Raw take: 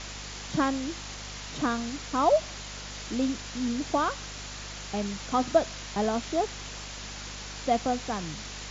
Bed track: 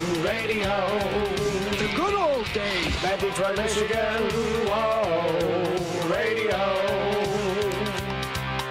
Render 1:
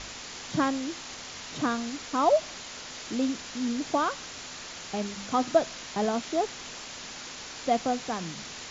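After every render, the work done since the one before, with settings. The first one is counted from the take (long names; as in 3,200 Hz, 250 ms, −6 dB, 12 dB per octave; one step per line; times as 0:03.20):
hum removal 50 Hz, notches 4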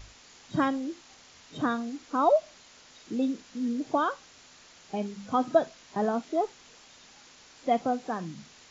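noise reduction from a noise print 13 dB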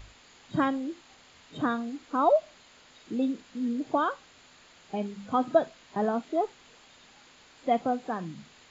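parametric band 5,700 Hz −13.5 dB 0.32 octaves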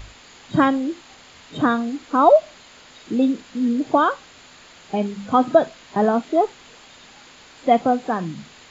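level +9.5 dB
brickwall limiter −3 dBFS, peak gain reduction 2.5 dB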